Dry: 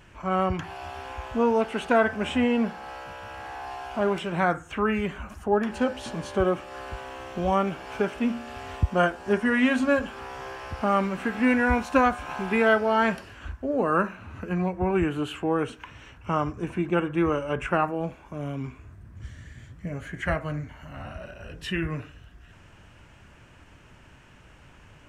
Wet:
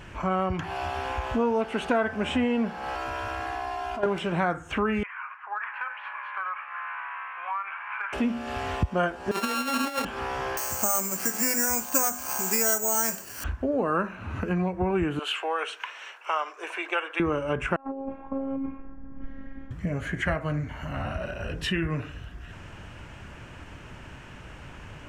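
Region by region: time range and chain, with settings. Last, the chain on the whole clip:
2.95–4.06 comb 2.9 ms, depth 96% + level quantiser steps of 20 dB
5.03–8.13 Chebyshev band-pass 1000–2400 Hz, order 3 + compressor 2.5:1, threshold -36 dBFS
9.31–10.05 sample sorter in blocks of 32 samples + HPF 310 Hz + negative-ratio compressor -27 dBFS, ratio -0.5
10.57–13.44 HPF 190 Hz 6 dB/oct + notches 50/100/150/200/250/300/350/400 Hz + careless resampling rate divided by 6×, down filtered, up zero stuff
15.19–17.2 Bessel high-pass 780 Hz, order 8 + dynamic EQ 3000 Hz, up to +6 dB, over -46 dBFS, Q 0.81
17.76–19.71 LPF 1000 Hz + negative-ratio compressor -33 dBFS, ratio -0.5 + robotiser 270 Hz
whole clip: high shelf 5500 Hz -4.5 dB; compressor 2.5:1, threshold -36 dBFS; gain +8.5 dB

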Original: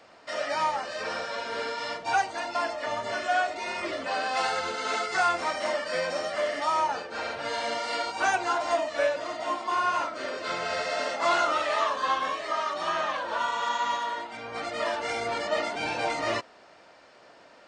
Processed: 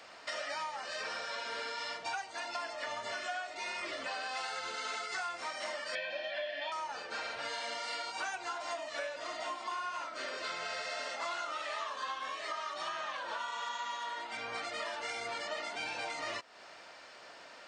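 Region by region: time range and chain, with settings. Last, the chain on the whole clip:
5.95–6.72 speaker cabinet 250–4000 Hz, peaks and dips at 380 Hz +10 dB, 580 Hz +7 dB, 840 Hz -9 dB, 1200 Hz -7 dB, 2200 Hz +6 dB, 3200 Hz +9 dB + comb 1.2 ms, depth 90%
whole clip: tilt shelf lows -5.5 dB, about 850 Hz; compressor, threshold -37 dBFS

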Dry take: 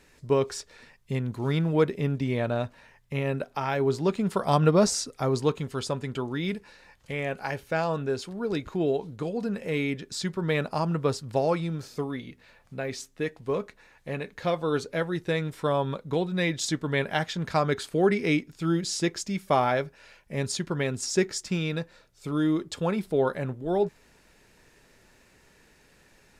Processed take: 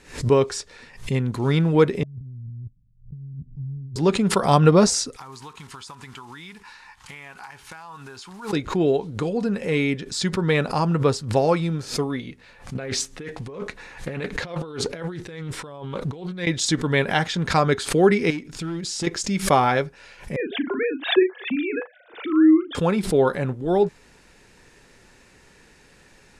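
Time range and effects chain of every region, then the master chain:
2.03–3.96 G.711 law mismatch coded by A + inverse Chebyshev low-pass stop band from 510 Hz, stop band 60 dB + negative-ratio compressor -41 dBFS
5.16–8.53 block floating point 5-bit + resonant low shelf 720 Hz -8.5 dB, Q 3 + compressor 12:1, threshold -42 dBFS
12.75–16.47 negative-ratio compressor -38 dBFS + Doppler distortion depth 0.32 ms
18.3–19.07 compressor 3:1, threshold -33 dBFS + overloaded stage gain 30 dB
20.36–22.75 sine-wave speech + doubler 38 ms -7 dB + three-band squash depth 40%
whole clip: LPF 11000 Hz 24 dB/oct; notch 630 Hz, Q 12; backwards sustainer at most 140 dB/s; gain +6 dB

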